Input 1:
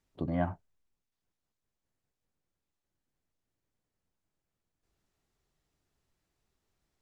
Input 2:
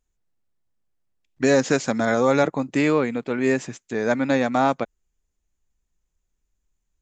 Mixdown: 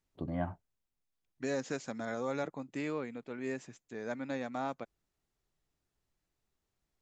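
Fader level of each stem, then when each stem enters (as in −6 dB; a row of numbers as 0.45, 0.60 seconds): −4.5, −17.0 decibels; 0.00, 0.00 seconds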